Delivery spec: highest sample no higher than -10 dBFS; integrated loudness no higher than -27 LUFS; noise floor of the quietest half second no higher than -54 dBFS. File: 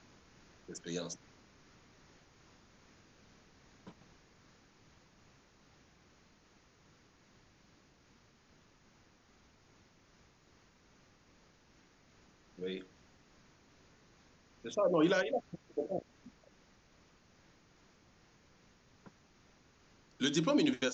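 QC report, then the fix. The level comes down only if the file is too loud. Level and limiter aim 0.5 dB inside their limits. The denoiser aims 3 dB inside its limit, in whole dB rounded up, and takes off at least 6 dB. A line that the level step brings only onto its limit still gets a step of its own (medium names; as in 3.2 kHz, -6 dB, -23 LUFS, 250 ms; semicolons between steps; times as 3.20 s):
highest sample -19.0 dBFS: pass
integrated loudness -35.0 LUFS: pass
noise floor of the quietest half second -66 dBFS: pass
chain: none needed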